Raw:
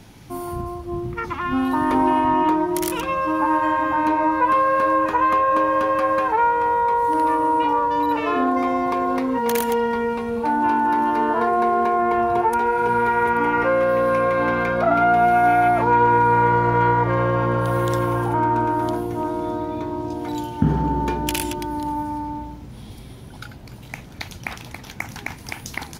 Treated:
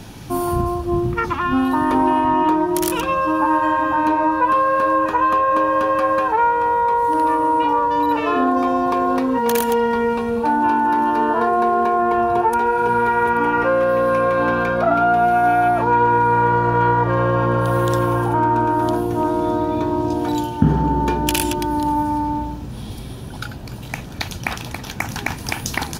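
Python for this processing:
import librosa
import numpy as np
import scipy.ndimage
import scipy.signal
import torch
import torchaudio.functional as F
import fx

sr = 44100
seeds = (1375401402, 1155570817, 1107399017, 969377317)

p1 = fx.notch(x, sr, hz=2100.0, q=8.6)
p2 = fx.rider(p1, sr, range_db=10, speed_s=0.5)
p3 = p1 + F.gain(torch.from_numpy(p2), 0.5).numpy()
y = F.gain(torch.from_numpy(p3), -4.0).numpy()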